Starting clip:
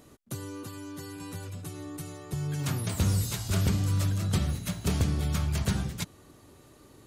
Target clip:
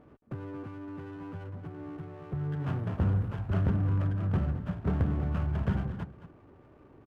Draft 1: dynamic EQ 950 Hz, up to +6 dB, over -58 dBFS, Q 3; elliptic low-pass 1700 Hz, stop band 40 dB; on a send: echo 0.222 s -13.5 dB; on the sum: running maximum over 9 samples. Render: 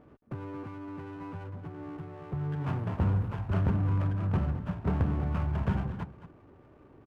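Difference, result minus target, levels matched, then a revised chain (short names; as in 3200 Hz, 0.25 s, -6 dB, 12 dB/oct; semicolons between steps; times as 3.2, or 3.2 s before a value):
1000 Hz band +3.0 dB
elliptic low-pass 1700 Hz, stop band 40 dB; on a send: echo 0.222 s -13.5 dB; on the sum: running maximum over 9 samples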